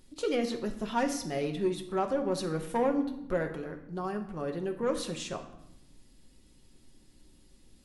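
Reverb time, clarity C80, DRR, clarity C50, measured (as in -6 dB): 0.85 s, 13.0 dB, 3.5 dB, 10.0 dB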